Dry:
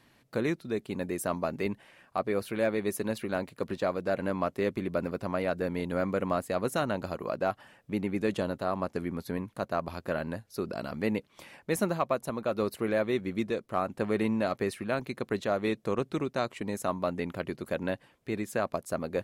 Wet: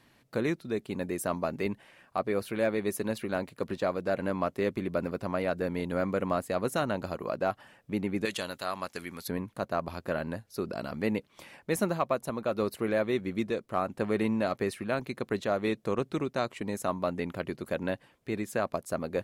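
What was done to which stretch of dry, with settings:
8.25–9.28 s: tilt shelf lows -10 dB, about 1.2 kHz

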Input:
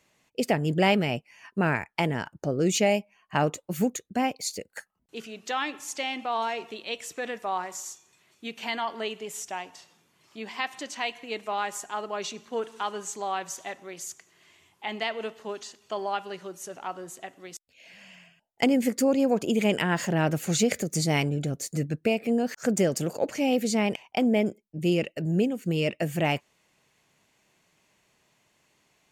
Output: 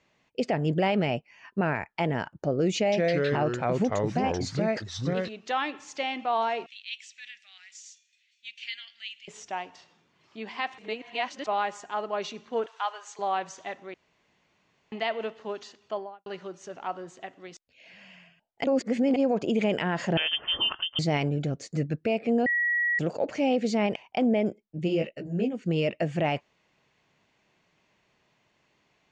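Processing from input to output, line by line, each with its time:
2.76–5.29 s: ever faster or slower copies 160 ms, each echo -3 st, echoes 3
6.66–9.28 s: inverse Chebyshev high-pass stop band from 1.1 kHz
10.78–11.47 s: reverse
12.66–13.19 s: high-pass 660 Hz 24 dB/octave
13.94–14.92 s: room tone
15.80–16.26 s: studio fade out
18.64–19.16 s: reverse
20.17–20.99 s: frequency inversion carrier 3.3 kHz
22.46–22.99 s: bleep 1.92 kHz -22 dBFS
24.87–25.53 s: detune thickener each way 33 cents -> 20 cents
whole clip: Bessel low-pass 4.1 kHz, order 8; dynamic bell 650 Hz, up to +4 dB, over -36 dBFS, Q 1.7; peak limiter -16.5 dBFS

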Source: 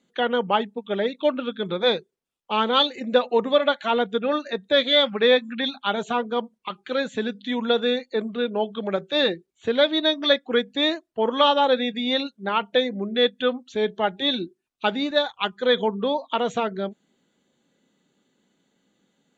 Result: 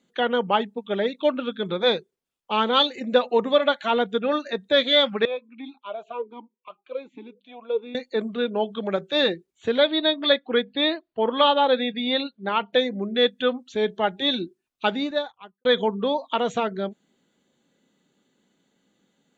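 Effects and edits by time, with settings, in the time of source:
5.25–7.95 s: talking filter a-u 1.3 Hz
9.78–12.73 s: Chebyshev low-pass 4.7 kHz, order 10
14.88–15.65 s: studio fade out

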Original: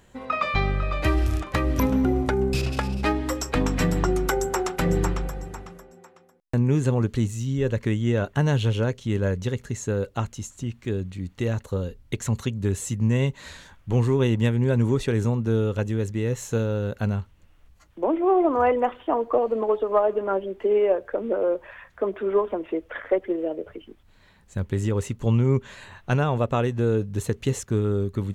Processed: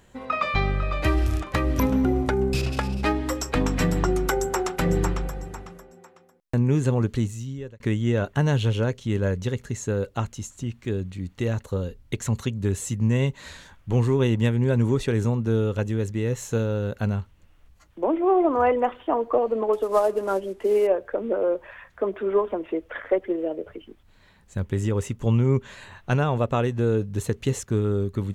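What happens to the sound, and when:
7.15–7.80 s: fade out
19.73–20.87 s: CVSD coder 64 kbps
24.64–25.56 s: band-stop 4.2 kHz

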